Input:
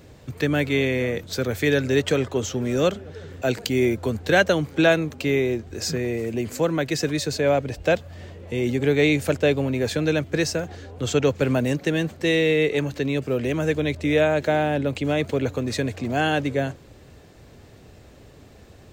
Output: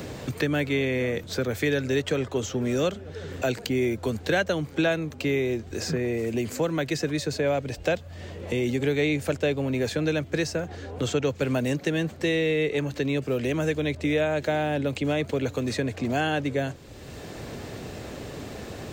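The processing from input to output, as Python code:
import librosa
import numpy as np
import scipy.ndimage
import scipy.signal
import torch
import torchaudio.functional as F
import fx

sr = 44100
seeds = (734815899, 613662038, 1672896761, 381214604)

y = fx.peak_eq(x, sr, hz=12000.0, db=-4.5, octaves=0.23)
y = fx.band_squash(y, sr, depth_pct=70)
y = y * 10.0 ** (-4.0 / 20.0)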